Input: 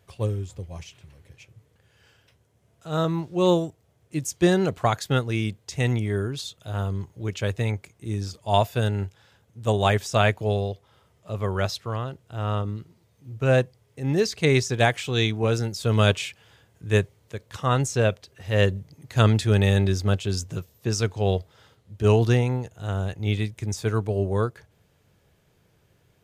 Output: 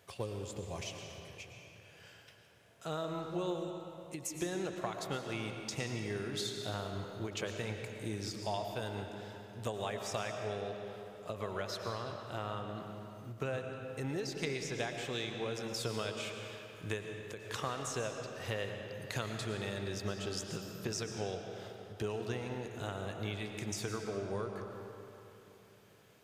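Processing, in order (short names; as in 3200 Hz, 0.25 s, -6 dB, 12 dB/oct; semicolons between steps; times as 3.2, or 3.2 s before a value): HPF 330 Hz 6 dB/oct; compressor 12:1, threshold -37 dBFS, peak gain reduction 21.5 dB; on a send at -3.5 dB: reverb RT60 3.2 s, pre-delay 70 ms; on the sum: ending taper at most 140 dB/s; gain +2 dB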